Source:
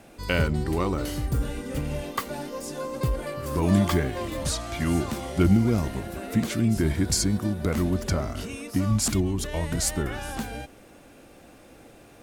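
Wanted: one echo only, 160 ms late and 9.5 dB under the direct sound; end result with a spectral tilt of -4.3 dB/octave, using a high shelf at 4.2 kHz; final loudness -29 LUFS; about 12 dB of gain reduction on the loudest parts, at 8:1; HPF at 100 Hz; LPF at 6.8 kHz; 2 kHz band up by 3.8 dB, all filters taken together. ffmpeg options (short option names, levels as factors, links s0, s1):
-af "highpass=100,lowpass=6800,equalizer=f=2000:t=o:g=3.5,highshelf=f=4200:g=7,acompressor=threshold=0.0398:ratio=8,aecho=1:1:160:0.335,volume=1.5"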